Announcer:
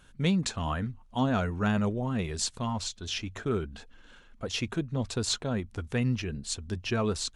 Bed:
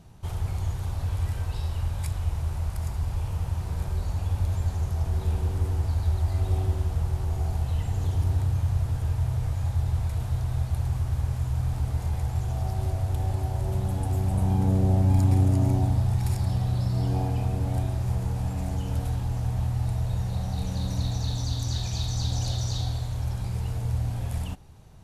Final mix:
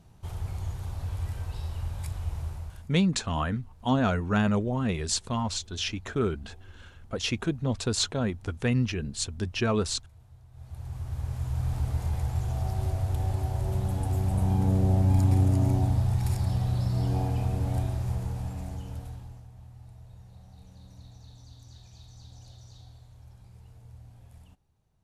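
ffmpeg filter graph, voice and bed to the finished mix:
-filter_complex "[0:a]adelay=2700,volume=2.5dB[a];[1:a]volume=19dB,afade=t=out:st=2.43:d=0.47:silence=0.0944061,afade=t=in:st=10.52:d=1.23:silence=0.0630957,afade=t=out:st=17.77:d=1.7:silence=0.1[b];[a][b]amix=inputs=2:normalize=0"

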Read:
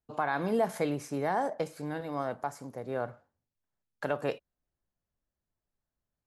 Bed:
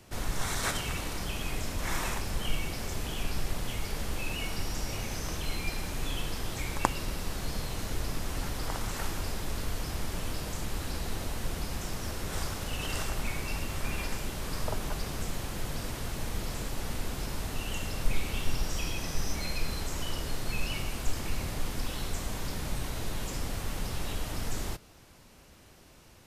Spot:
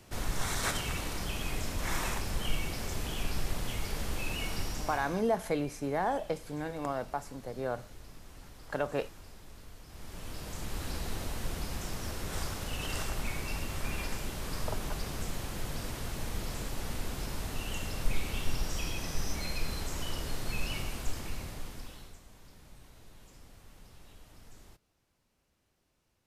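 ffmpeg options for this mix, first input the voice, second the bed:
-filter_complex "[0:a]adelay=4700,volume=-1dB[a];[1:a]volume=14dB,afade=t=out:st=4.6:d=0.66:silence=0.158489,afade=t=in:st=9.87:d=1:silence=0.177828,afade=t=out:st=20.79:d=1.41:silence=0.11885[b];[a][b]amix=inputs=2:normalize=0"

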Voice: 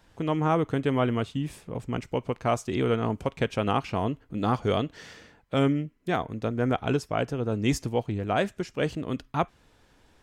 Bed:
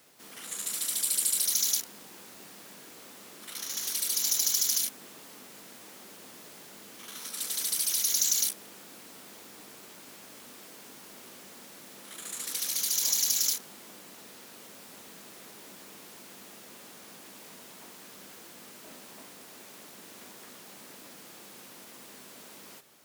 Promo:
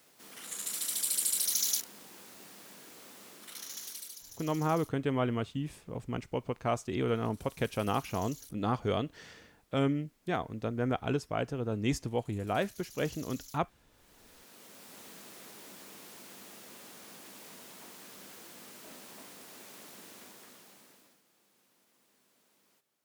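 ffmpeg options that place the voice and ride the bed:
-filter_complex "[0:a]adelay=4200,volume=-5.5dB[a];[1:a]volume=20dB,afade=t=out:st=3.27:d=0.96:silence=0.0841395,afade=t=in:st=13.9:d=1.15:silence=0.0707946,afade=t=out:st=19.97:d=1.25:silence=0.1[b];[a][b]amix=inputs=2:normalize=0"

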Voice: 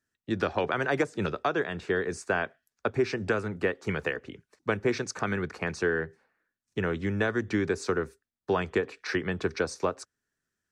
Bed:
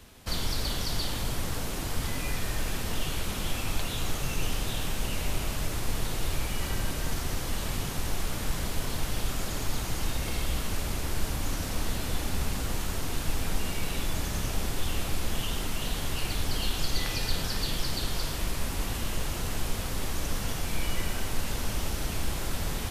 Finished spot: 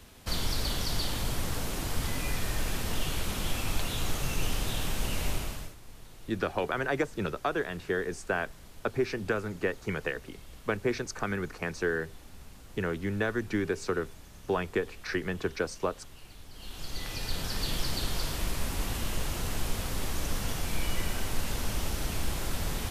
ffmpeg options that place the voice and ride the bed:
-filter_complex "[0:a]adelay=6000,volume=-2.5dB[a];[1:a]volume=18dB,afade=t=out:st=5.28:d=0.47:silence=0.112202,afade=t=in:st=16.53:d=1.22:silence=0.11885[b];[a][b]amix=inputs=2:normalize=0"

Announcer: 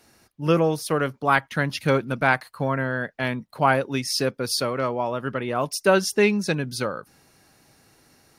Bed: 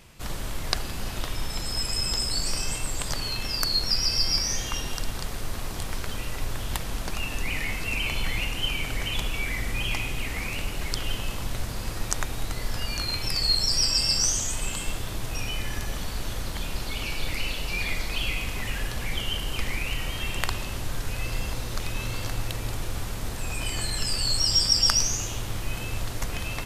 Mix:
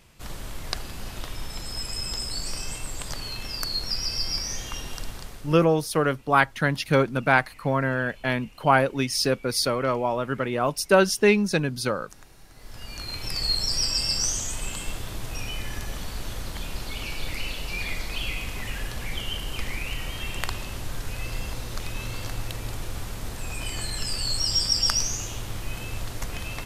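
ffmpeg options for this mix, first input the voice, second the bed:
-filter_complex "[0:a]adelay=5050,volume=0.5dB[a];[1:a]volume=16dB,afade=t=out:st=5.03:d=0.65:silence=0.125893,afade=t=in:st=12.52:d=0.92:silence=0.1[b];[a][b]amix=inputs=2:normalize=0"

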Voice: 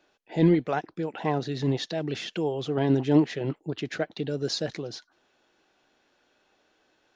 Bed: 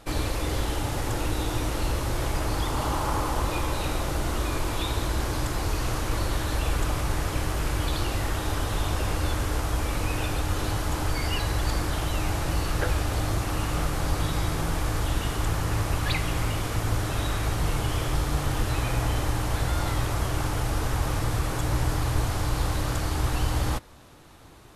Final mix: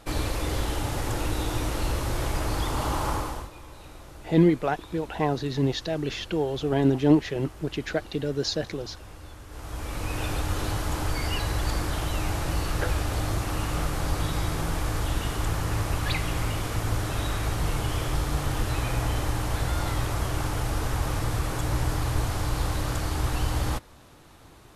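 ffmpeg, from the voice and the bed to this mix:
-filter_complex "[0:a]adelay=3950,volume=1.5dB[a];[1:a]volume=16dB,afade=t=out:st=3.09:d=0.41:silence=0.141254,afade=t=in:st=9.48:d=0.83:silence=0.149624[b];[a][b]amix=inputs=2:normalize=0"

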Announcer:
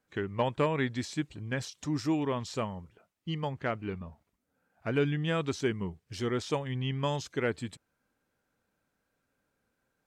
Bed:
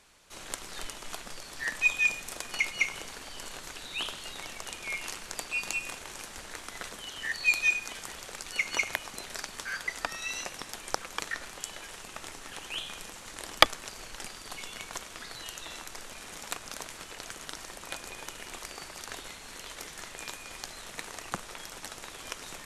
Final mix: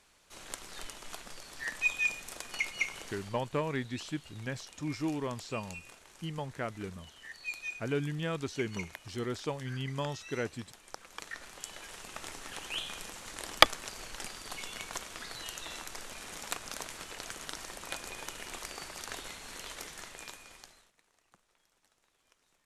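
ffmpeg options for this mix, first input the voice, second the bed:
-filter_complex "[0:a]adelay=2950,volume=-4.5dB[a];[1:a]volume=9dB,afade=t=out:st=3.18:d=0.22:silence=0.334965,afade=t=in:st=10.93:d=1.39:silence=0.211349,afade=t=out:st=19.68:d=1.24:silence=0.0334965[b];[a][b]amix=inputs=2:normalize=0"

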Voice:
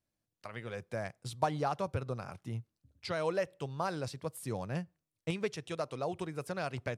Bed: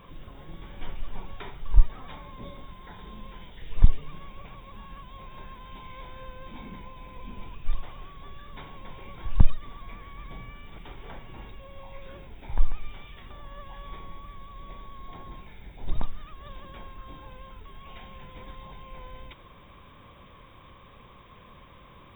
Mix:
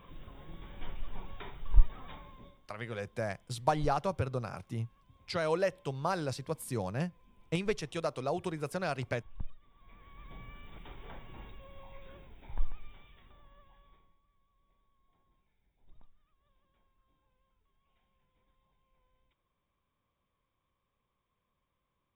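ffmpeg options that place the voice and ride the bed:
-filter_complex "[0:a]adelay=2250,volume=2.5dB[a];[1:a]volume=12.5dB,afade=t=out:st=2.11:d=0.49:silence=0.125893,afade=t=in:st=9.73:d=0.82:silence=0.133352,afade=t=out:st=11.4:d=2.77:silence=0.0501187[b];[a][b]amix=inputs=2:normalize=0"

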